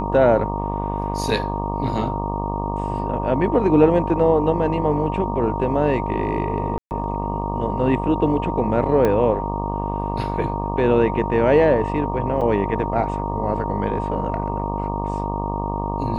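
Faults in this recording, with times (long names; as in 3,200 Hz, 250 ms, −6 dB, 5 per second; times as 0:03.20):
mains buzz 50 Hz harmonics 24 −26 dBFS
whistle 930 Hz −27 dBFS
0:06.78–0:06.91: drop-out 129 ms
0:09.05: click −9 dBFS
0:12.41–0:12.42: drop-out 5.2 ms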